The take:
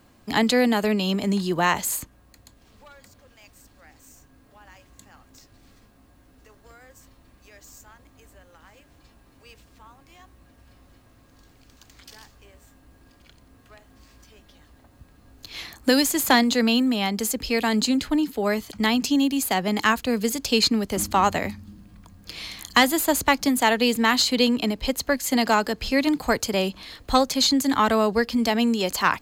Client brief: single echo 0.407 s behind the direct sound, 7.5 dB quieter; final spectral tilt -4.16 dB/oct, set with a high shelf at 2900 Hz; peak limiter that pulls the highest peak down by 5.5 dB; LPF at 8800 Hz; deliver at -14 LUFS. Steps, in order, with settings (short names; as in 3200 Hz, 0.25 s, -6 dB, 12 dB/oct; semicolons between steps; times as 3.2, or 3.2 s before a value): LPF 8800 Hz; high shelf 2900 Hz -5 dB; limiter -13.5 dBFS; echo 0.407 s -7.5 dB; gain +9.5 dB